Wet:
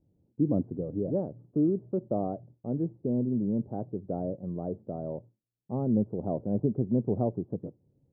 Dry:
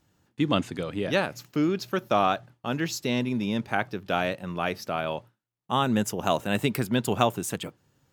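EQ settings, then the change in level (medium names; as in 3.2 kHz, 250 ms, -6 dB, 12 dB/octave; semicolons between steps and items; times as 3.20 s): inverse Chebyshev low-pass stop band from 2.5 kHz, stop band 70 dB; distance through air 470 m; 0.0 dB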